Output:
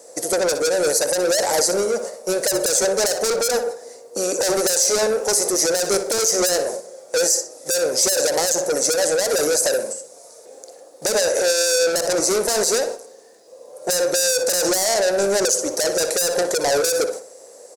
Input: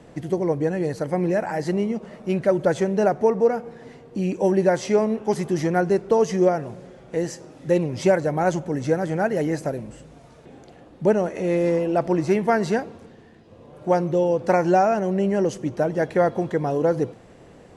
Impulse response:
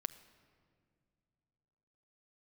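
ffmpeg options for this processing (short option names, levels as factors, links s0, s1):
-filter_complex "[0:a]agate=range=0.316:threshold=0.0141:ratio=16:detection=peak,highpass=f=520:t=q:w=5.3,asoftclip=type=tanh:threshold=0.0708,aexciter=amount=13.2:drive=6.7:freq=4700,asplit=2[s0][s1];[s1]adelay=61,lowpass=f=4300:p=1,volume=0.282,asplit=2[s2][s3];[s3]adelay=61,lowpass=f=4300:p=1,volume=0.37,asplit=2[s4][s5];[s5]adelay=61,lowpass=f=4300:p=1,volume=0.37,asplit=2[s6][s7];[s7]adelay=61,lowpass=f=4300:p=1,volume=0.37[s8];[s2][s4][s6][s8]amix=inputs=4:normalize=0[s9];[s0][s9]amix=inputs=2:normalize=0,alimiter=level_in=4.22:limit=0.891:release=50:level=0:latency=1,volume=0.473"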